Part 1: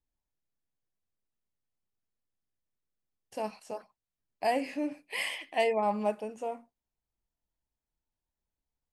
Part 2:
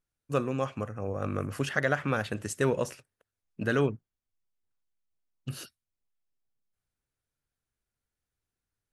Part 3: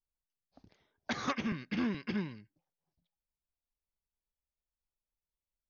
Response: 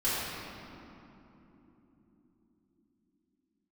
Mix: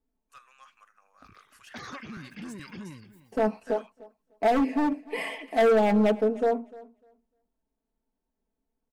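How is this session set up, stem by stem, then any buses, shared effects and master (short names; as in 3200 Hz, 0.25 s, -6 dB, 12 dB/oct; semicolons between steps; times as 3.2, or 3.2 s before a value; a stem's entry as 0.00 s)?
+2.0 dB, 0.00 s, no send, echo send -21 dB, EQ curve 130 Hz 0 dB, 280 Hz +13 dB, 4400 Hz -11 dB; hard clip -24 dBFS, distortion -7 dB; comb 4.5 ms, depth 73%
-12.0 dB, 0.00 s, no send, no echo send, HPF 1100 Hz 24 dB/oct; soft clip -31 dBFS, distortion -7 dB
+2.5 dB, 0.65 s, no send, echo send -15 dB, limiter -34.5 dBFS, peak gain reduction 11 dB; reverb removal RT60 0.94 s; sustainer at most 81 dB/s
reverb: off
echo: feedback echo 0.3 s, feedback 16%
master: dry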